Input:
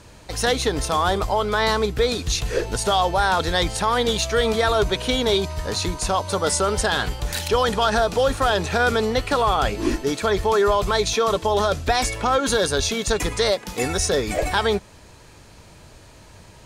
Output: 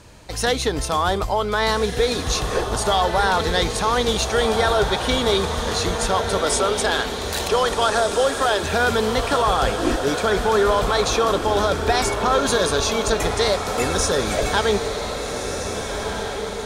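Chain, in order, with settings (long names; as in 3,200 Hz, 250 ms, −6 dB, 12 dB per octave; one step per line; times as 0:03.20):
0:06.38–0:08.63: Butterworth high-pass 260 Hz 48 dB per octave
feedback delay with all-pass diffusion 1,607 ms, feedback 54%, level −6 dB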